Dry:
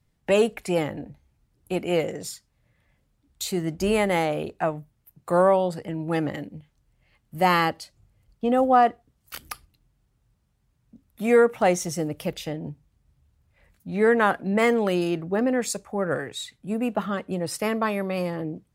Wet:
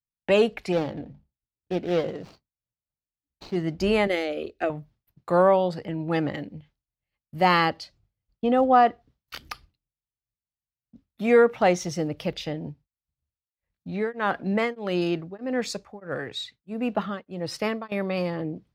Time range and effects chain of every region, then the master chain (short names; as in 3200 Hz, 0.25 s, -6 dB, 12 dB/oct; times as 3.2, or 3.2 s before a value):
0.72–3.56 median filter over 25 samples + notches 50/100/150/200/250 Hz
4.07–4.7 fixed phaser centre 390 Hz, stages 4 + transient shaper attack +6 dB, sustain -6 dB
12.57–17.92 short-mantissa float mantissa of 6-bit + beating tremolo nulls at 1.6 Hz
whole clip: expander -48 dBFS; resonant high shelf 6500 Hz -11 dB, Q 1.5